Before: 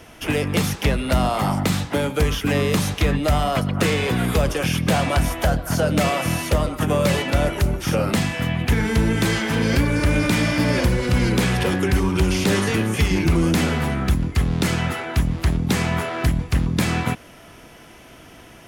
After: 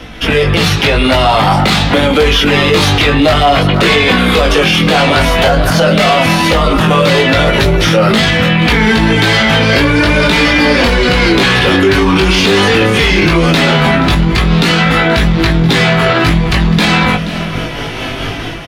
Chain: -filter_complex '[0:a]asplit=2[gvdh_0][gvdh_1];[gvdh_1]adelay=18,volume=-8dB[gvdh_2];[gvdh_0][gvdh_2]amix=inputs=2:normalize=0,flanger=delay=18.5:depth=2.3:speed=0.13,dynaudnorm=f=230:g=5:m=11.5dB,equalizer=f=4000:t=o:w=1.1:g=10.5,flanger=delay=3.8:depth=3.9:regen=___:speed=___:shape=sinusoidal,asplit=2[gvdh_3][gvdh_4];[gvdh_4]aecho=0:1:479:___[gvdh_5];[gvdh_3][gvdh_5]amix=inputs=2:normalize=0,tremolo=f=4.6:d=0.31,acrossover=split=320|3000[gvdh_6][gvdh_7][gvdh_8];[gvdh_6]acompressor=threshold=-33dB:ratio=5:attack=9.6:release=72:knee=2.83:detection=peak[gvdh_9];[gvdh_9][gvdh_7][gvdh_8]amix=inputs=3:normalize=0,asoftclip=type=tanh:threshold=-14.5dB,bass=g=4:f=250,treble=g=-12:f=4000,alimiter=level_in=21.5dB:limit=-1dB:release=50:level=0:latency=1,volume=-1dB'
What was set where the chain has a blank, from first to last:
-35, 0.47, 0.0891